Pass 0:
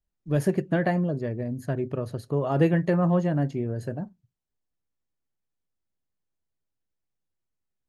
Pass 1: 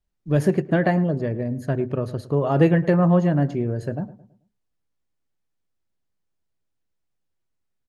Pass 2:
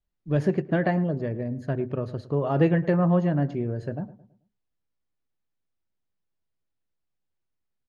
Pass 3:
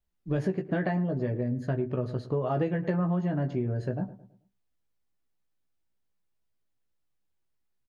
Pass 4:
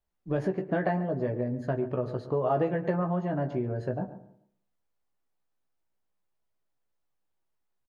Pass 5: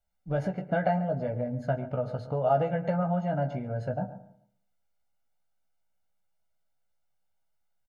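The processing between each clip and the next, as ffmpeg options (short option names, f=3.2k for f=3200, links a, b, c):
-filter_complex "[0:a]highshelf=f=9.6k:g=-9,asplit=2[a][b];[b]adelay=109,lowpass=f=1.6k:p=1,volume=-16dB,asplit=2[c][d];[d]adelay=109,lowpass=f=1.6k:p=1,volume=0.41,asplit=2[e][f];[f]adelay=109,lowpass=f=1.6k:p=1,volume=0.41,asplit=2[g][h];[h]adelay=109,lowpass=f=1.6k:p=1,volume=0.41[i];[a][c][e][g][i]amix=inputs=5:normalize=0,volume=4.5dB"
-af "lowpass=5k,volume=-4dB"
-filter_complex "[0:a]asplit=2[a][b];[b]adelay=16,volume=-5dB[c];[a][c]amix=inputs=2:normalize=0,acompressor=threshold=-25dB:ratio=5"
-filter_complex "[0:a]equalizer=f=780:w=0.59:g=8.5,asplit=2[a][b];[b]adelay=139,lowpass=f=2k:p=1,volume=-14.5dB,asplit=2[c][d];[d]adelay=139,lowpass=f=2k:p=1,volume=0.25,asplit=2[e][f];[f]adelay=139,lowpass=f=2k:p=1,volume=0.25[g];[a][c][e][g]amix=inputs=4:normalize=0,volume=-4dB"
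-af "bandreject=f=60:t=h:w=6,bandreject=f=120:t=h:w=6,aecho=1:1:1.4:0.85,volume=-1.5dB"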